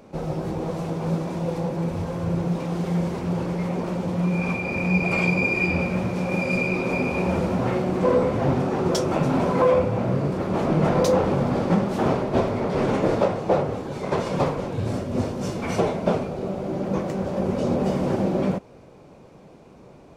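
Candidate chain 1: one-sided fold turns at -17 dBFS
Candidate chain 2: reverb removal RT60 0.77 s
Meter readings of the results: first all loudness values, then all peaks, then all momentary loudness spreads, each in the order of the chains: -24.5, -25.5 LUFS; -9.0, -9.0 dBFS; 7, 8 LU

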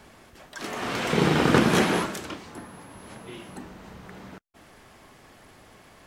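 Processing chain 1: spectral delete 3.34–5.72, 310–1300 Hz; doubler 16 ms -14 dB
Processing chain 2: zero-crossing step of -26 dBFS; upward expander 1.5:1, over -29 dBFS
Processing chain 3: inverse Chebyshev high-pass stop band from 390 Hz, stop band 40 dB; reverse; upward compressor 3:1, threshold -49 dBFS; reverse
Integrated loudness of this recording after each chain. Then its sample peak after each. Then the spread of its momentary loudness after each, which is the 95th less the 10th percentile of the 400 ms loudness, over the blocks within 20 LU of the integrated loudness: -24.0, -28.0, -28.5 LUFS; -4.5, -4.5, -11.0 dBFS; 22, 18, 22 LU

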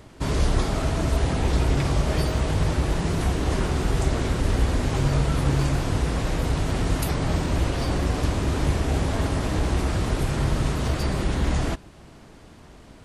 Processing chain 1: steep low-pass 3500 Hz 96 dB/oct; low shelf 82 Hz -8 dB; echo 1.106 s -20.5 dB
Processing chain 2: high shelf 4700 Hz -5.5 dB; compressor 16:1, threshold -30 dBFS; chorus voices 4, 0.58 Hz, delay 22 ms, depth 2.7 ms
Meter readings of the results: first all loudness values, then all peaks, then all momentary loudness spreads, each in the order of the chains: -27.0, -38.5 LUFS; -13.0, -24.0 dBFS; 3, 3 LU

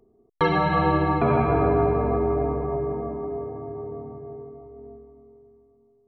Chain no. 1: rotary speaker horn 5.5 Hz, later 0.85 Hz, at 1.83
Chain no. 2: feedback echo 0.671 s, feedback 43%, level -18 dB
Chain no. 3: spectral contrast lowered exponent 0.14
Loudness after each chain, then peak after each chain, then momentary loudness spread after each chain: -26.0, -23.5, -21.5 LUFS; -10.5, -8.5, -1.5 dBFS; 18, 18, 18 LU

